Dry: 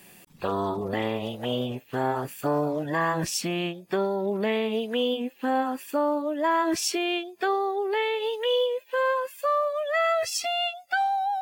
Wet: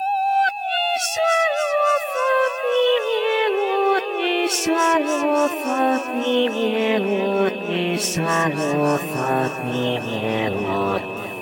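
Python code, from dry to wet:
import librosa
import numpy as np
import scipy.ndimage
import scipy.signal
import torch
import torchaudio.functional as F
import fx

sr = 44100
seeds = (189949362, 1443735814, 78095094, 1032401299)

y = x[::-1].copy()
y = y + 10.0 ** (-39.0 / 20.0) * np.sin(2.0 * np.pi * 2600.0 * np.arange(len(y)) / sr)
y = fx.echo_warbled(y, sr, ms=284, feedback_pct=76, rate_hz=2.8, cents=73, wet_db=-11)
y = y * librosa.db_to_amplitude(5.5)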